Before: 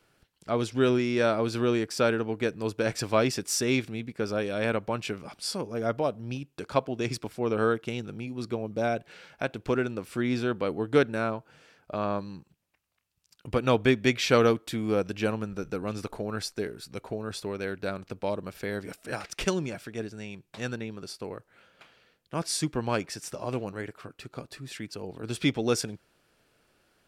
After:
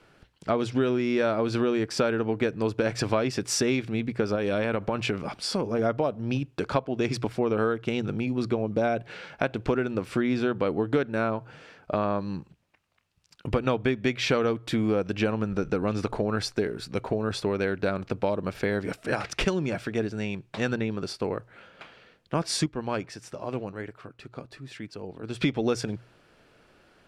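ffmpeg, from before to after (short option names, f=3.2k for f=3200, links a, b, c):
-filter_complex "[0:a]asettb=1/sr,asplit=3[a][b][c];[a]atrim=end=4.354[d];[b]atrim=start=4.35:end=5.79,asetpts=PTS-STARTPTS,afade=t=in:d=0.004:c=qsin,afade=t=out:st=1.436:d=0.004:c=qsin,acompressor=threshold=-29dB:ratio=6:attack=3.2:release=140:knee=1:detection=peak[e];[c]atrim=start=5.786[f];[d][e]acrossfade=d=0.004:c1=hsin:c2=qsin[g];[g][f]acrossfade=d=0.004:c1=qsin:c2=hsin,asettb=1/sr,asplit=3[h][i][j];[h]atrim=end=15.224[k];[i]atrim=start=15.22:end=16.22,asetpts=PTS-STARTPTS,afade=t=in:d=0.004:c=qsin,afade=t=out:st=0.996:d=0.004:c=qsin,lowpass=11k[l];[j]atrim=start=16.216[m];[k][l]acrossfade=d=0.004:c1=hsin:c2=qsin[n];[n][m]acrossfade=d=0.004:c1=qsin:c2=hsin,asplit=3[o][p][q];[o]atrim=end=22.662[r];[p]atrim=start=22.658:end=25.412,asetpts=PTS-STARTPTS,volume=-9.5dB[s];[q]atrim=start=25.408[t];[r][s]acrossfade=d=0.004:c1=hsin:c2=hsin[u];[u][t]acrossfade=d=0.004:c1=hsin:c2=hsin,aemphasis=mode=reproduction:type=50fm,bandreject=f=60:t=h:w=6,bandreject=f=120:t=h:w=6,acompressor=threshold=-31dB:ratio=6,volume=9dB"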